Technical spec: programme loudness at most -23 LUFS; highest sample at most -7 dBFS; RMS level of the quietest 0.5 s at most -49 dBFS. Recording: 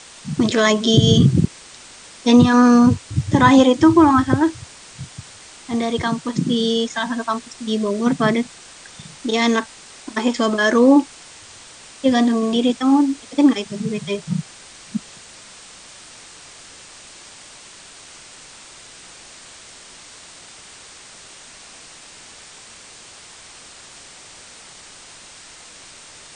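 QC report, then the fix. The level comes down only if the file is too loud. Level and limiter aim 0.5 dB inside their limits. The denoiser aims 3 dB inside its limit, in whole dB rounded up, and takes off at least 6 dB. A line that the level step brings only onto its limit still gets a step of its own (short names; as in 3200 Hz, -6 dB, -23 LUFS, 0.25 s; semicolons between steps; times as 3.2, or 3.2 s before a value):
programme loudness -17.0 LUFS: fail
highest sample -2.0 dBFS: fail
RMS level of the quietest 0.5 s -42 dBFS: fail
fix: denoiser 6 dB, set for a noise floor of -42 dBFS; gain -6.5 dB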